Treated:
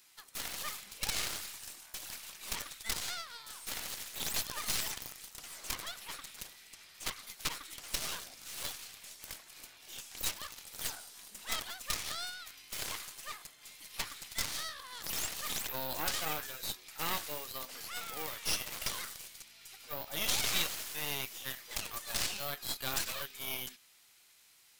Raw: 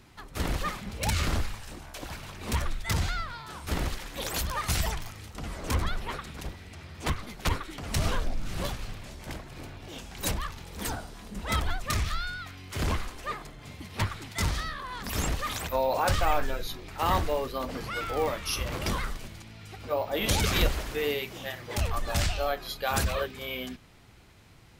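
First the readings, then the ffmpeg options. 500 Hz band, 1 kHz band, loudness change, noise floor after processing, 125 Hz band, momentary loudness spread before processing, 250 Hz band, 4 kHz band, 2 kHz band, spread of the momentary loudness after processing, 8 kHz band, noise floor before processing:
−16.0 dB, −12.0 dB, −6.0 dB, −62 dBFS, −21.0 dB, 14 LU, −15.5 dB, −2.0 dB, −6.5 dB, 12 LU, 0.0 dB, −49 dBFS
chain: -filter_complex "[0:a]acrossover=split=5800[link_01][link_02];[link_02]acompressor=threshold=-45dB:ratio=4:attack=1:release=60[link_03];[link_01][link_03]amix=inputs=2:normalize=0,aderivative,aeval=exprs='0.0841*(cos(1*acos(clip(val(0)/0.0841,-1,1)))-cos(1*PI/2))+0.0168*(cos(8*acos(clip(val(0)/0.0841,-1,1)))-cos(8*PI/2))':channel_layout=same,volume=3.5dB"

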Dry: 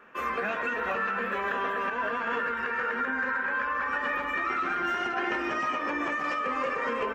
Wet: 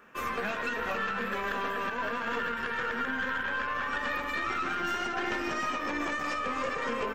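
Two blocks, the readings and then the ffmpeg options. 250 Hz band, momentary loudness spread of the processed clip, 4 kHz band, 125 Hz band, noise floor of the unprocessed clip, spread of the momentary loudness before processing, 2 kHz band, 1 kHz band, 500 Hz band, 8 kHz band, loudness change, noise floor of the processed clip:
−0.5 dB, 1 LU, +3.0 dB, +3.5 dB, −33 dBFS, 1 LU, −2.5 dB, −3.0 dB, −2.5 dB, can't be measured, −2.5 dB, −35 dBFS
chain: -af "bass=frequency=250:gain=6,treble=frequency=4000:gain=11,aeval=exprs='(tanh(11.2*val(0)+0.6)-tanh(0.6))/11.2':channel_layout=same"

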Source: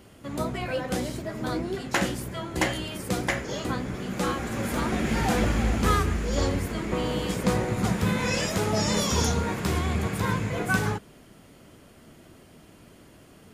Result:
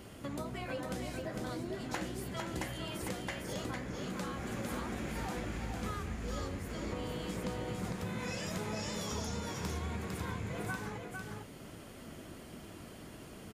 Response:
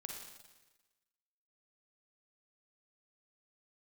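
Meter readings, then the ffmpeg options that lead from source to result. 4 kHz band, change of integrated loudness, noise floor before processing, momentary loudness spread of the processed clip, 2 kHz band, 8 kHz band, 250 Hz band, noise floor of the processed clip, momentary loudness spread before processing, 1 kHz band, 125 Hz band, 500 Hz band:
−12.0 dB, −12.5 dB, −53 dBFS, 11 LU, −12.5 dB, −12.0 dB, −11.5 dB, −50 dBFS, 7 LU, −12.0 dB, −12.0 dB, −11.5 dB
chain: -af "acompressor=threshold=-39dB:ratio=6,aecho=1:1:453:0.596,volume=1dB"

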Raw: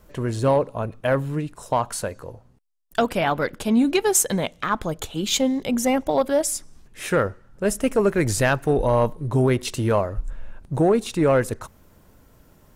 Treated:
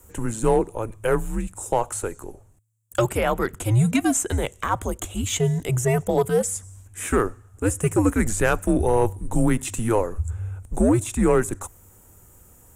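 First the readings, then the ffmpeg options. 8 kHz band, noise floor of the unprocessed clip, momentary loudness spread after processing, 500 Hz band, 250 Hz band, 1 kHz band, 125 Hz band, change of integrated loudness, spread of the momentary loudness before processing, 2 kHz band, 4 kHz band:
−1.0 dB, −54 dBFS, 10 LU, −1.5 dB, −0.5 dB, −1.5 dB, +2.0 dB, −1.0 dB, 10 LU, −2.0 dB, −6.0 dB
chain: -filter_complex "[0:a]highshelf=frequency=6100:width_type=q:width=3:gain=9,acrossover=split=4000[link_01][link_02];[link_02]acompressor=threshold=-29dB:ratio=4:attack=1:release=60[link_03];[link_01][link_03]amix=inputs=2:normalize=0,afreqshift=-110"

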